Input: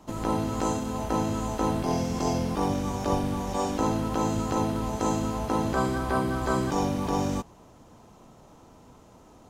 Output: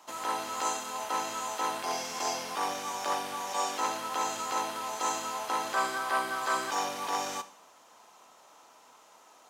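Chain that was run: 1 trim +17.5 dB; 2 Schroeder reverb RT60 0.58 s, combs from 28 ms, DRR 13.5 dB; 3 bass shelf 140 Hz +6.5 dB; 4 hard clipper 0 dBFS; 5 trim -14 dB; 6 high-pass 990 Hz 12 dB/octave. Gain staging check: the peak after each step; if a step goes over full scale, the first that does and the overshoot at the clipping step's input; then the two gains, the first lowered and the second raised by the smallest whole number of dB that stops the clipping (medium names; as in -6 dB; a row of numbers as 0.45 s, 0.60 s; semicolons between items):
+7.0 dBFS, +7.0 dBFS, +8.0 dBFS, 0.0 dBFS, -14.0 dBFS, -17.0 dBFS; step 1, 8.0 dB; step 1 +9.5 dB, step 5 -6 dB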